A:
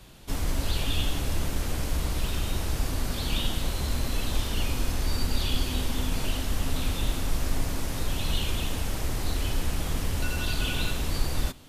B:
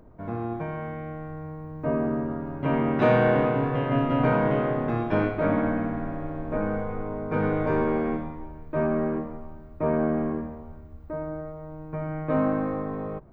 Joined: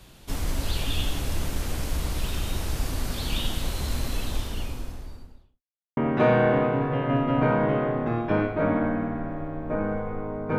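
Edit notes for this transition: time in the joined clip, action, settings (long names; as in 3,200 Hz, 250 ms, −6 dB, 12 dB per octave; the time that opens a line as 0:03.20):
A
0:03.98–0:05.62: fade out and dull
0:05.62–0:05.97: silence
0:05.97: continue with B from 0:02.79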